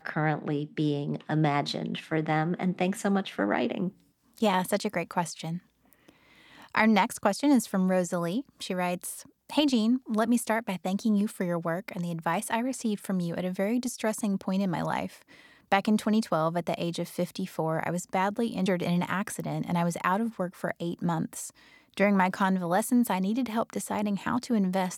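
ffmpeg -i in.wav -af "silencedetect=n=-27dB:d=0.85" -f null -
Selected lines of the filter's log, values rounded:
silence_start: 5.49
silence_end: 6.75 | silence_duration: 1.26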